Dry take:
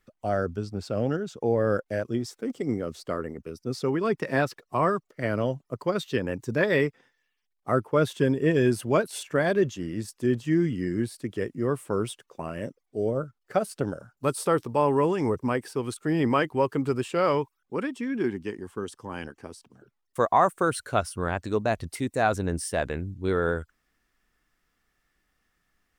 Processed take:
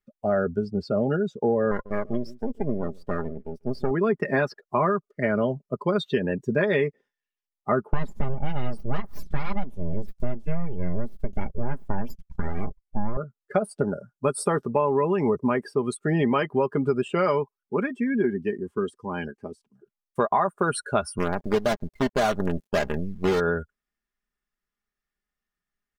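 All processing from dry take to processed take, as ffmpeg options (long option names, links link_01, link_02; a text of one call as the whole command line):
ffmpeg -i in.wav -filter_complex "[0:a]asettb=1/sr,asplit=3[link_01][link_02][link_03];[link_01]atrim=end=1.714[link_04];[link_02]atrim=start=1.71:end=3.91,asetpts=PTS-STARTPTS,afade=type=in:duration=0.004:curve=qsin,afade=type=out:start_time=2.196:duration=0.004:curve=qsin,aeval=exprs='max(val(0),0)':channel_layout=same,aecho=1:1:144:0.126,atrim=end_sample=97020[link_05];[link_03]atrim=start=3.906[link_06];[link_04][link_05]acrossfade=duration=0.004:curve1=hsin:curve2=qsin[link_07];[link_07][link_06]acrossfade=duration=0.004:curve1=qsin:curve2=hsin,asettb=1/sr,asplit=3[link_08][link_09][link_10];[link_08]atrim=end=7.934[link_11];[link_09]atrim=start=7.93:end=13.17,asetpts=PTS-STARTPTS,afade=type=in:duration=0.004:curve=qsin,afade=type=out:start_time=5.236:duration=0.004:curve=qsin,aeval=exprs='abs(val(0))':channel_layout=same,bass=frequency=250:gain=10,treble=frequency=4000:gain=2[link_12];[link_10]atrim=start=13.166[link_13];[link_11][link_12]acrossfade=duration=0.004:curve1=hsin:curve2=qsin[link_14];[link_14][link_13]acrossfade=duration=0.004:curve1=qsin:curve2=hsin,asettb=1/sr,asplit=3[link_15][link_16][link_17];[link_15]atrim=end=21.184[link_18];[link_16]atrim=start=21.18:end=23.4,asetpts=PTS-STARTPTS,afade=type=in:duration=0.004:curve=qsin,afade=type=out:start_time=2.216:duration=0.004:curve=qsin,lowpass=frequency=1400:poles=1,aemphasis=mode=reproduction:type=75fm,acrusher=bits=5:dc=4:mix=0:aa=0.000001[link_19];[link_17]atrim=start=23.396[link_20];[link_18][link_19]acrossfade=duration=0.004:curve1=hsin:curve2=qsin[link_21];[link_21][link_20]acrossfade=duration=0.004:curve1=qsin:curve2=hsin,afftdn=noise_reduction=21:noise_floor=-39,aecho=1:1:4.9:0.56,acompressor=threshold=-23dB:ratio=6,volume=4.5dB" out.wav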